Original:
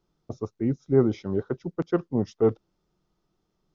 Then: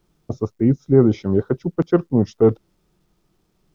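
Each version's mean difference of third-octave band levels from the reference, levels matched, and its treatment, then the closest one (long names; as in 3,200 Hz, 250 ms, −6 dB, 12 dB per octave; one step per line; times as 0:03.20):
1.0 dB: low-shelf EQ 400 Hz +5 dB
in parallel at −1 dB: brickwall limiter −12 dBFS, peak gain reduction 7 dB
on the sum: bit-depth reduction 12 bits, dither none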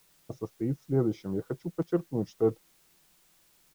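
4.0 dB: dynamic equaliser 2,000 Hz, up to −6 dB, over −42 dBFS, Q 0.8
comb filter 6.2 ms, depth 39%
bit-depth reduction 10 bits, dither triangular
level −4.5 dB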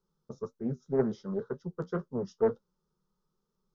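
3.0 dB: phaser with its sweep stopped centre 460 Hz, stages 8
flanger 1.9 Hz, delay 9.5 ms, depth 5.1 ms, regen −45%
highs frequency-modulated by the lows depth 0.29 ms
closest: first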